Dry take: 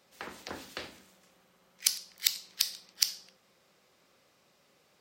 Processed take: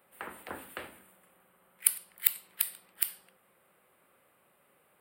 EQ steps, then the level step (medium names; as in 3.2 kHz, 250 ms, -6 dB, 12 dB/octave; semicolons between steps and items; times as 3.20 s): FFT filter 220 Hz 0 dB, 1.4 kHz +5 dB, 3 kHz -1 dB, 6.2 kHz -25 dB, 8.8 kHz +9 dB; -2.5 dB